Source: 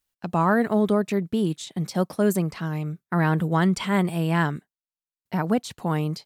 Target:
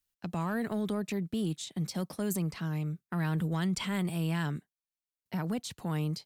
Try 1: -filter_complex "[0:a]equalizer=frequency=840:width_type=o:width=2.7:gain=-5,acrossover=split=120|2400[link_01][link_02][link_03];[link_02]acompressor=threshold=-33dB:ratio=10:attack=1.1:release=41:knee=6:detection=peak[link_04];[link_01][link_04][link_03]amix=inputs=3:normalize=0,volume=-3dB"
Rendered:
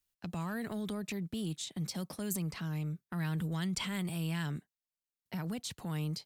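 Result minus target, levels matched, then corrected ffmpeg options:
downward compressor: peak gain reduction +7 dB
-filter_complex "[0:a]equalizer=frequency=840:width_type=o:width=2.7:gain=-5,acrossover=split=120|2400[link_01][link_02][link_03];[link_02]acompressor=threshold=-25dB:ratio=10:attack=1.1:release=41:knee=6:detection=peak[link_04];[link_01][link_04][link_03]amix=inputs=3:normalize=0,volume=-3dB"

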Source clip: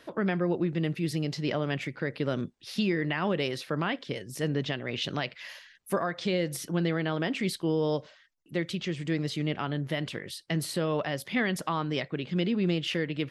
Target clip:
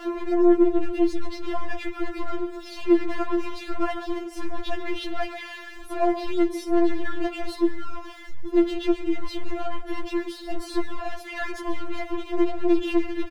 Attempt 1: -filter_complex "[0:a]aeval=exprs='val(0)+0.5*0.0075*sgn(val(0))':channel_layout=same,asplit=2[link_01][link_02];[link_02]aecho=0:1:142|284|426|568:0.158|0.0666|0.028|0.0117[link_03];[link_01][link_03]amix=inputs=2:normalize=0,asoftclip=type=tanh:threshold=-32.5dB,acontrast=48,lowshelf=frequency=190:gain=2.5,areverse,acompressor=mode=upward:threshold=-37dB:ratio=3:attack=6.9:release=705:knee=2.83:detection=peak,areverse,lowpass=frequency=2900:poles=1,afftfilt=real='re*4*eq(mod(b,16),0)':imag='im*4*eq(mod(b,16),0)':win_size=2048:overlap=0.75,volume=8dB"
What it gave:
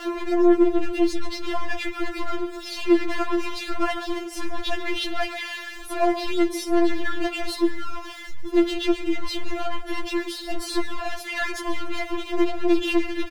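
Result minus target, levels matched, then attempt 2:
4,000 Hz band +6.5 dB
-filter_complex "[0:a]aeval=exprs='val(0)+0.5*0.0075*sgn(val(0))':channel_layout=same,asplit=2[link_01][link_02];[link_02]aecho=0:1:142|284|426|568:0.158|0.0666|0.028|0.0117[link_03];[link_01][link_03]amix=inputs=2:normalize=0,asoftclip=type=tanh:threshold=-32.5dB,acontrast=48,lowshelf=frequency=190:gain=2.5,areverse,acompressor=mode=upward:threshold=-37dB:ratio=3:attack=6.9:release=705:knee=2.83:detection=peak,areverse,lowpass=frequency=950:poles=1,afftfilt=real='re*4*eq(mod(b,16),0)':imag='im*4*eq(mod(b,16),0)':win_size=2048:overlap=0.75,volume=8dB"

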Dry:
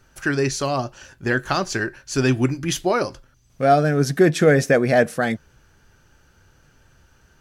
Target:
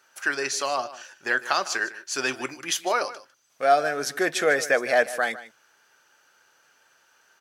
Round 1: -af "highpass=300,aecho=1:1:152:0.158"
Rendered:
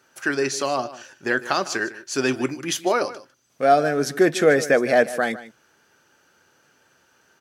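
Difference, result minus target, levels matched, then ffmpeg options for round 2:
250 Hz band +8.0 dB
-af "highpass=680,aecho=1:1:152:0.158"

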